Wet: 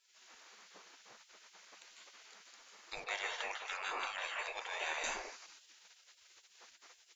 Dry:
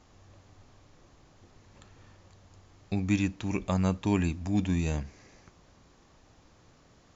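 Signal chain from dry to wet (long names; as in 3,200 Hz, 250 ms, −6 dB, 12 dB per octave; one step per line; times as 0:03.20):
parametric band 100 Hz +9 dB 0.4 octaves
convolution reverb RT60 0.40 s, pre-delay 148 ms, DRR −2 dB
speech leveller 0.5 s
gate on every frequency bin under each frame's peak −30 dB weak
0:03.04–0:05.04: three-way crossover with the lows and the highs turned down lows −16 dB, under 430 Hz, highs −13 dB, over 3,700 Hz
level +4.5 dB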